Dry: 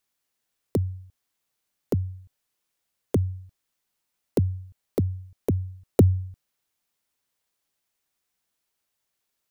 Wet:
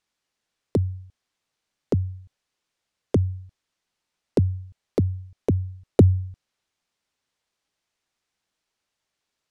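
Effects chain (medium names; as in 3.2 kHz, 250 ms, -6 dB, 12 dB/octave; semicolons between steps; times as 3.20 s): low-pass 6.4 kHz 12 dB/octave; trim +2.5 dB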